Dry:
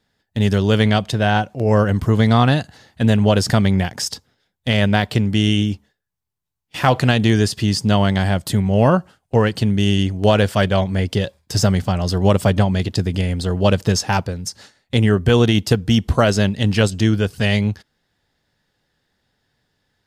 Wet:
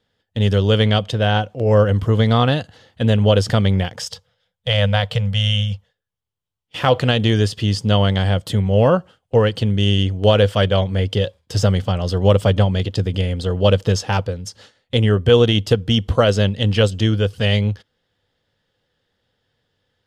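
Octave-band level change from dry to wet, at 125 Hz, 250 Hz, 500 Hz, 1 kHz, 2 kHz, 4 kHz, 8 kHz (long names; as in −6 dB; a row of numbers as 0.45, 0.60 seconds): +0.5, −3.5, +2.0, −2.0, −2.5, +2.0, −6.0 decibels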